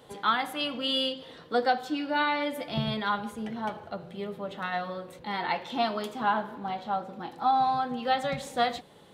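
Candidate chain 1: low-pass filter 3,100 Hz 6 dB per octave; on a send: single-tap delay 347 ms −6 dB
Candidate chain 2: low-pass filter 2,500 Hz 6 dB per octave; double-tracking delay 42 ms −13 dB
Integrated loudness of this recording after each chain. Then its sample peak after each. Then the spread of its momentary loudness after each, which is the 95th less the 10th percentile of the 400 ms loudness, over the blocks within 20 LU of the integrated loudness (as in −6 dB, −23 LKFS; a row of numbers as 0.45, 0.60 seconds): −29.5, −30.5 LKFS; −13.0, −13.5 dBFS; 9, 10 LU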